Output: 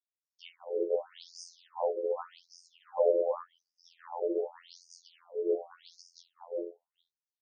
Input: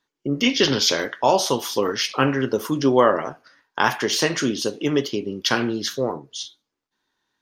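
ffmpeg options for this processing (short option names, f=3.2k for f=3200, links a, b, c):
-filter_complex "[0:a]equalizer=f=2.4k:t=o:w=1.4:g=-6.5,afftfilt=real='hypot(re,im)*cos(PI*b)':imag='0':win_size=2048:overlap=0.75,firequalizer=gain_entry='entry(140,0);entry(1600,-25);entry(3100,-22);entry(4500,-22)':delay=0.05:min_phase=1,asplit=2[a][b];[b]aecho=0:1:75|199|329|538:0.168|0.355|0.562|0.531[c];[a][c]amix=inputs=2:normalize=0,afftfilt=real='re*between(b*sr/1024,450*pow(6700/450,0.5+0.5*sin(2*PI*0.86*pts/sr))/1.41,450*pow(6700/450,0.5+0.5*sin(2*PI*0.86*pts/sr))*1.41)':imag='im*between(b*sr/1024,450*pow(6700/450,0.5+0.5*sin(2*PI*0.86*pts/sr))/1.41,450*pow(6700/450,0.5+0.5*sin(2*PI*0.86*pts/sr))*1.41)':win_size=1024:overlap=0.75,volume=3.5dB"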